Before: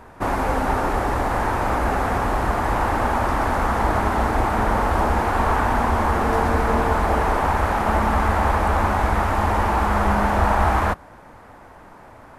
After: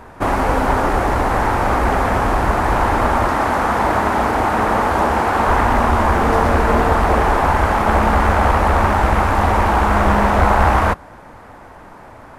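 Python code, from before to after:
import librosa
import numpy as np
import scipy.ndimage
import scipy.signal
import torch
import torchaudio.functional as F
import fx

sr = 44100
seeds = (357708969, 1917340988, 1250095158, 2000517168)

y = fx.highpass(x, sr, hz=140.0, slope=6, at=(3.28, 5.48))
y = fx.doppler_dist(y, sr, depth_ms=0.67)
y = F.gain(torch.from_numpy(y), 5.0).numpy()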